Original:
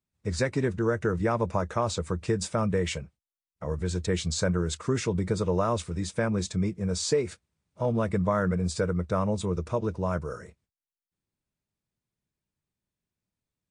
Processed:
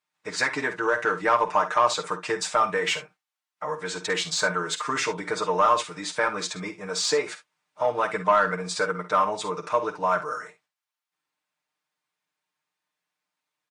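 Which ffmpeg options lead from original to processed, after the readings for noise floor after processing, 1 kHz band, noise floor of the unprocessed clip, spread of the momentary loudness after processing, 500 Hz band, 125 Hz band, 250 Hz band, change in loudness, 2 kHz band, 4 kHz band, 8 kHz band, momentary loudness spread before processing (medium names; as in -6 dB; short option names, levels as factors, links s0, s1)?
under -85 dBFS, +11.0 dB, under -85 dBFS, 10 LU, +1.5 dB, -14.0 dB, -7.5 dB, +3.5 dB, +10.5 dB, +7.5 dB, +4.0 dB, 6 LU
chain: -filter_complex "[0:a]highpass=240,lowshelf=f=650:t=q:w=1.5:g=-6.5,aecho=1:1:6.6:0.81,asplit=2[s0][s1];[s1]highpass=f=720:p=1,volume=3.98,asoftclip=type=tanh:threshold=0.316[s2];[s0][s2]amix=inputs=2:normalize=0,lowpass=f=2800:p=1,volume=0.501,aecho=1:1:50|67:0.237|0.158,volume=1.33"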